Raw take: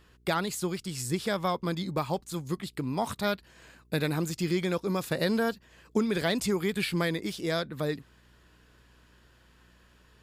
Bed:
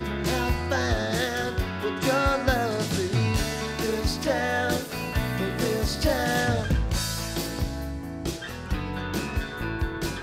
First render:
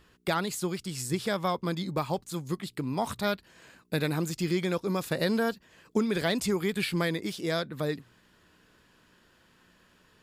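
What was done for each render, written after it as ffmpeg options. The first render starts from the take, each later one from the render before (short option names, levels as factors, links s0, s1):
-af "bandreject=f=60:t=h:w=4,bandreject=f=120:t=h:w=4"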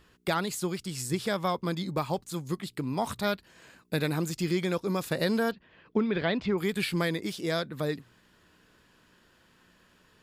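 -filter_complex "[0:a]asettb=1/sr,asplit=3[s0][s1][s2];[s0]atrim=end=5.514[s3];[s1]atrim=start=5.51:end=6.58,asetpts=PTS-STARTPTS,afade=t=in:d=0.004:c=qsin,afade=t=out:st=1.066:d=0.004:c=qsin,lowpass=f=3500:w=0.5412,lowpass=f=3500:w=1.3066[s4];[s2]atrim=start=6.576[s5];[s3][s4]acrossfade=d=0.004:c1=hsin:c2=qsin[s6];[s6][s5]acrossfade=d=0.004:c1=qsin:c2=hsin"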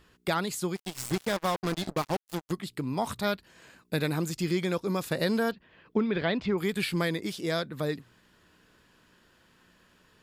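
-filter_complex "[0:a]asplit=3[s0][s1][s2];[s0]afade=t=out:st=0.75:d=0.02[s3];[s1]acrusher=bits=4:mix=0:aa=0.5,afade=t=in:st=0.75:d=0.02,afade=t=out:st=2.51:d=0.02[s4];[s2]afade=t=in:st=2.51:d=0.02[s5];[s3][s4][s5]amix=inputs=3:normalize=0"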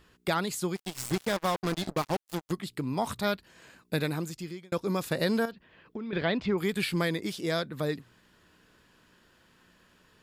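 -filter_complex "[0:a]asettb=1/sr,asplit=3[s0][s1][s2];[s0]atrim=end=5.454[s3];[s1]atrim=start=5.45:end=6.13,asetpts=PTS-STARTPTS,afade=t=in:d=0.004:c=qsin,afade=t=out:st=0.676:d=0.004:c=qsin,acompressor=threshold=0.02:ratio=6:attack=3.2:release=140:knee=1:detection=peak[s4];[s2]atrim=start=6.126[s5];[s3][s4]acrossfade=d=0.004:c1=hsin:c2=qsin[s6];[s6][s5]acrossfade=d=0.004:c1=qsin:c2=hsin,asplit=2[s7][s8];[s7]atrim=end=4.72,asetpts=PTS-STARTPTS,afade=t=out:st=3.95:d=0.77[s9];[s8]atrim=start=4.72,asetpts=PTS-STARTPTS,afade=t=in:d=0.004:c=hsin[s10];[s9][s10]concat=n=2:v=0:a=1"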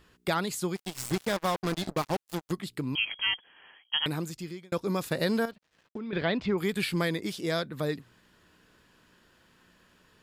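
-filter_complex "[0:a]asettb=1/sr,asplit=3[s0][s1][s2];[s0]atrim=end=2.954[s3];[s1]atrim=start=2.95:end=4.06,asetpts=PTS-STARTPTS,afade=t=in:d=0.004:c=qsin,afade=t=out:st=1.106:d=0.004:c=qsin,lowpass=f=2900:t=q:w=0.5098,lowpass=f=2900:t=q:w=0.6013,lowpass=f=2900:t=q:w=0.9,lowpass=f=2900:t=q:w=2.563,afreqshift=-3400[s4];[s2]atrim=start=4.056[s5];[s3][s4]acrossfade=d=0.004:c1=hsin:c2=qsin[s6];[s6][s5]acrossfade=d=0.004:c1=qsin:c2=hsin,asettb=1/sr,asplit=3[s7][s8][s9];[s7]atrim=end=5.074[s10];[s8]atrim=start=5.07:end=5.99,asetpts=PTS-STARTPTS,afade=t=in:d=0.004:c=qsin,afade=t=out:st=0.916:d=0.004:c=qsin,aeval=exprs='sgn(val(0))*max(abs(val(0))-0.0015,0)':c=same[s11];[s9]atrim=start=5.986[s12];[s10][s11]acrossfade=d=0.004:c1=hsin:c2=qsin[s13];[s13][s12]acrossfade=d=0.004:c1=qsin:c2=hsin"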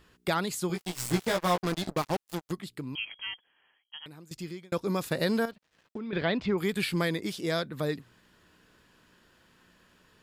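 -filter_complex "[0:a]asettb=1/sr,asplit=3[s0][s1][s2];[s0]atrim=end=0.684[s3];[s1]atrim=start=0.68:end=1.6,asetpts=PTS-STARTPTS,afade=t=in:d=0.004:c=qsin,afade=t=out:st=0.916:d=0.004:c=qsin,asplit=2[s4][s5];[s5]adelay=17,volume=0.708[s6];[s4][s6]amix=inputs=2:normalize=0,atrim=end_sample=40572[s7];[s2]atrim=start=1.596[s8];[s3][s7]acrossfade=d=0.004:c1=hsin:c2=qsin[s9];[s9][s8]acrossfade=d=0.004:c1=qsin:c2=hsin,asplit=2[s10][s11];[s10]atrim=end=4.31,asetpts=PTS-STARTPTS,afade=t=out:st=2.22:d=2.09:c=qua:silence=0.141254[s12];[s11]atrim=start=4.31,asetpts=PTS-STARTPTS,afade=t=in:d=0.004:c=hsin:silence=0.141254[s13];[s12][s13]concat=n=2:v=0:a=1"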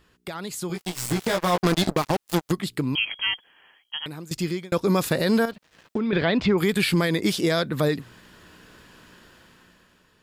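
-af "alimiter=level_in=1.06:limit=0.0631:level=0:latency=1:release=118,volume=0.944,dynaudnorm=f=210:g=9:m=3.98"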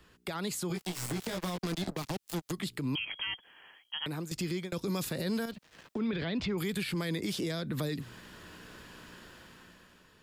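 -filter_complex "[0:a]acrossover=split=160|320|2400[s0][s1][s2][s3];[s0]acompressor=threshold=0.02:ratio=4[s4];[s1]acompressor=threshold=0.0282:ratio=4[s5];[s2]acompressor=threshold=0.02:ratio=4[s6];[s3]acompressor=threshold=0.02:ratio=4[s7];[s4][s5][s6][s7]amix=inputs=4:normalize=0,alimiter=level_in=1.19:limit=0.0631:level=0:latency=1:release=97,volume=0.841"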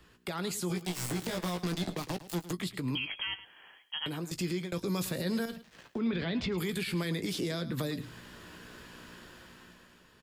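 -filter_complex "[0:a]asplit=2[s0][s1];[s1]adelay=17,volume=0.282[s2];[s0][s2]amix=inputs=2:normalize=0,aecho=1:1:108:0.178"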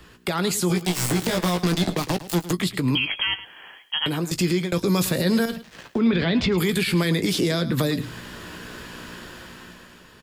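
-af "volume=3.76"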